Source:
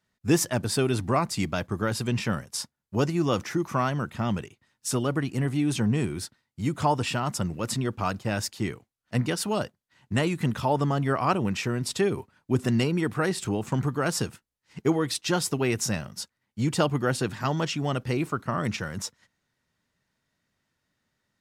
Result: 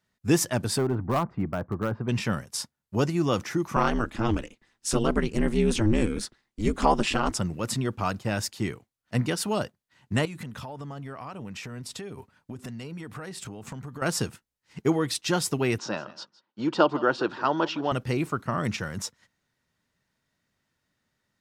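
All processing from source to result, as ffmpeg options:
-filter_complex "[0:a]asettb=1/sr,asplit=3[a][b][c];[a]atrim=end=0.784[d];[b]atrim=start=0.78:end=2.09,asetpts=PTS-STARTPTS,afade=t=in:d=0.004:c=qsin,afade=t=out:st=1.306:d=0.004:c=qsin,lowpass=f=1.4k:w=0.5412,lowpass=f=1.4k:w=1.3066,volume=19dB,asoftclip=hard,volume=-19dB,aemphasis=mode=production:type=50fm[e];[c]atrim=start=2.086[f];[d][e]acrossfade=d=0.004:c1=hsin:c2=qsin[g];[g][f]acrossfade=d=0.004:c1=qsin:c2=hsin,asettb=1/sr,asplit=3[h][i][j];[h]atrim=end=3.764[k];[i]atrim=start=3.76:end=7.39,asetpts=PTS-STARTPTS,afade=t=in:d=0.004:c=qsin,afade=t=out:st=3.626:d=0.004:c=qsin,equalizer=f=13k:w=1.7:g=-11,acontrast=36,aeval=exprs='val(0)*sin(2*PI*110*n/s)':c=same[l];[j]atrim=start=7.386[m];[k][l]acrossfade=d=0.004:c1=hsin:c2=qsin[n];[n][m]acrossfade=d=0.004:c1=qsin:c2=hsin,asettb=1/sr,asplit=3[o][p][q];[o]atrim=end=10.254[r];[p]atrim=start=10.25:end=14.02,asetpts=PTS-STARTPTS,afade=t=in:d=0.004:c=qsin,afade=t=out:st=3.766:d=0.004:c=qsin,bandreject=f=350:w=6.7,acompressor=threshold=-34dB:ratio=16:attack=3.2:release=140:knee=1:detection=peak[s];[q]atrim=start=14.016[t];[r][s]acrossfade=d=0.004:c1=hsin:c2=qsin[u];[u][t]acrossfade=d=0.004:c1=qsin:c2=hsin,asettb=1/sr,asplit=3[v][w][x];[v]atrim=end=15.784[y];[w]atrim=start=15.78:end=17.92,asetpts=PTS-STARTPTS,afade=t=in:d=0.004:c=qsin,afade=t=out:st=2.136:d=0.004:c=qsin,highpass=290,equalizer=f=330:t=q:w=4:g=8,equalizer=f=590:t=q:w=4:g=4,equalizer=f=960:t=q:w=4:g=7,equalizer=f=1.4k:t=q:w=4:g=6,equalizer=f=2.1k:t=q:w=4:g=-8,lowpass=f=4.7k:w=0.5412,lowpass=f=4.7k:w=1.3066,aecho=1:1:161:0.112,atrim=end_sample=94374[z];[x]atrim=start=17.916[aa];[y][z]acrossfade=d=0.004:c1=hsin:c2=qsin[ab];[ab][aa]acrossfade=d=0.004:c1=qsin:c2=hsin"

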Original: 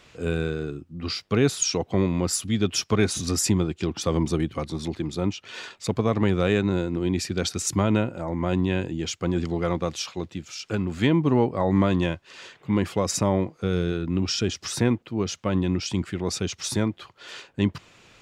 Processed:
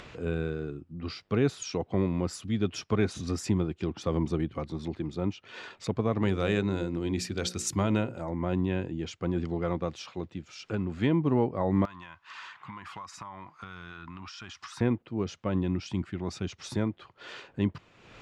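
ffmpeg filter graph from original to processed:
-filter_complex "[0:a]asettb=1/sr,asplit=3[a][b][c];[a]atrim=end=6.224[d];[b]atrim=start=6.22:end=8.31,asetpts=PTS-STARTPTS,afade=t=in:d=0.004:c=qsin,afade=t=out:st=2.086:d=0.004:c=qsin,aemphasis=mode=production:type=75kf,bandreject=f=60:t=h:w=6,bandreject=f=120:t=h:w=6,bandreject=f=180:t=h:w=6,bandreject=f=240:t=h:w=6,bandreject=f=300:t=h:w=6,bandreject=f=360:t=h:w=6,bandreject=f=420:t=h:w=6,bandreject=f=480:t=h:w=6,bandreject=f=540:t=h:w=6[e];[c]atrim=start=8.306[f];[d][e]acrossfade=d=0.004:c1=hsin:c2=qsin[g];[g][f]acrossfade=d=0.004:c1=qsin:c2=hsin,asettb=1/sr,asplit=3[h][i][j];[h]atrim=end=11.854[k];[i]atrim=start=11.85:end=14.81,asetpts=PTS-STARTPTS,afade=t=in:d=0.004:c=qsin,afade=t=out:st=2.956:d=0.004:c=qsin,lowshelf=f=710:t=q:w=3:g=-13.5,acompressor=threshold=-35dB:ratio=5:attack=3.2:release=140:knee=1:detection=peak,aeval=exprs='(mod(9.44*val(0)+1,2)-1)/9.44':c=same[l];[j]atrim=start=14.806[m];[k][l]acrossfade=d=0.004:c1=hsin:c2=qsin[n];[n][m]acrossfade=d=0.004:c1=qsin:c2=hsin,asettb=1/sr,asplit=3[o][p][q];[o]atrim=end=15.684[r];[p]atrim=start=15.68:end=16.49,asetpts=PTS-STARTPTS,afade=t=in:d=0.004:c=qsin,afade=t=out:st=0.806:d=0.004:c=qsin,agate=range=-33dB:threshold=-39dB:ratio=3:release=100:detection=peak,equalizer=f=470:t=o:w=0.36:g=-8[s];[q]atrim=start=16.486[t];[r][s]acrossfade=d=0.004:c1=hsin:c2=qsin[u];[u][t]acrossfade=d=0.004:c1=qsin:c2=hsin,aemphasis=mode=reproduction:type=75fm,acompressor=mode=upward:threshold=-31dB:ratio=2.5,volume=-5.5dB"

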